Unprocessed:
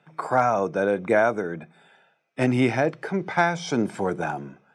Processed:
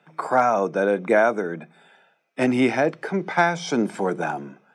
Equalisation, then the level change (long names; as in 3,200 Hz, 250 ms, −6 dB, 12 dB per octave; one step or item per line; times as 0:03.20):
high-pass filter 160 Hz 24 dB per octave
+2.0 dB